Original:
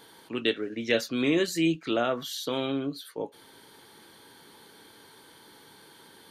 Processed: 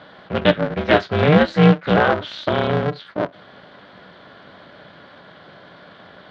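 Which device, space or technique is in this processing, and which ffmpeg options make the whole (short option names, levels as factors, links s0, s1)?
ring modulator pedal into a guitar cabinet: -af "aeval=exprs='val(0)*sgn(sin(2*PI*150*n/s))':c=same,highpass=91,equalizer=f=100:t=q:w=4:g=4,equalizer=f=180:t=q:w=4:g=8,equalizer=f=600:t=q:w=4:g=6,equalizer=f=1500:t=q:w=4:g=6,equalizer=f=2600:t=q:w=4:g=-5,lowpass=f=3500:w=0.5412,lowpass=f=3500:w=1.3066,volume=2.66"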